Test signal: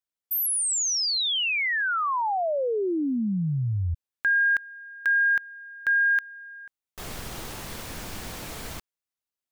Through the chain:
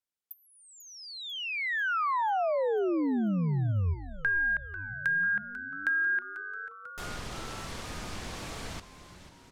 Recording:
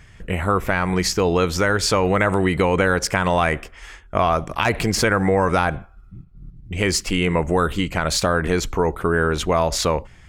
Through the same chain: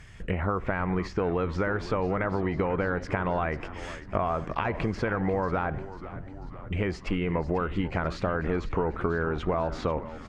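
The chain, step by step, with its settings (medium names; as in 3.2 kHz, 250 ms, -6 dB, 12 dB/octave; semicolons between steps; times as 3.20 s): compression 8:1, threshold -21 dBFS; low-pass that closes with the level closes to 1.8 kHz, closed at -23.5 dBFS; frequency-shifting echo 493 ms, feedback 64%, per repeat -96 Hz, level -14 dB; trim -2 dB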